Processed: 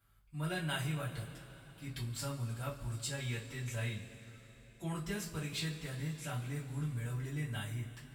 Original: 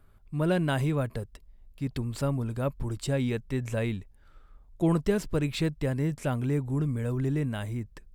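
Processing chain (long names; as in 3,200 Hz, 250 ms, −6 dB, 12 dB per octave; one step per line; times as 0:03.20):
high-pass filter 53 Hz
guitar amp tone stack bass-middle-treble 5-5-5
speech leveller within 3 dB 2 s
coupled-rooms reverb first 0.24 s, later 4.1 s, from −22 dB, DRR −8.5 dB
level −3.5 dB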